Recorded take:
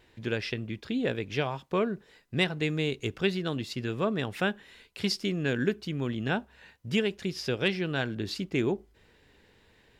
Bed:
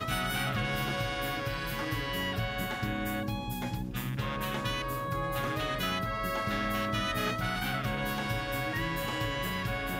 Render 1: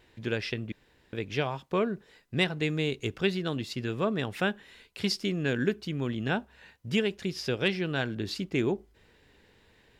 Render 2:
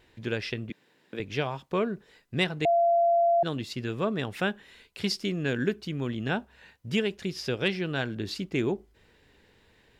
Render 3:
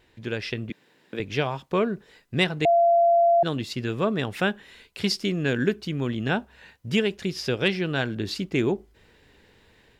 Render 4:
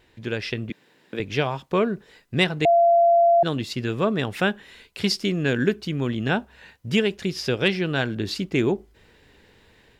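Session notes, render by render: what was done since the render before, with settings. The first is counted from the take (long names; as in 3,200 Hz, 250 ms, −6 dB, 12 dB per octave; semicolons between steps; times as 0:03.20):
0:00.72–0:01.13: fill with room tone
0:00.70–0:01.20: high-pass filter 150 Hz 24 dB per octave; 0:02.65–0:03.43: beep over 684 Hz −19 dBFS
automatic gain control gain up to 4 dB
level +2 dB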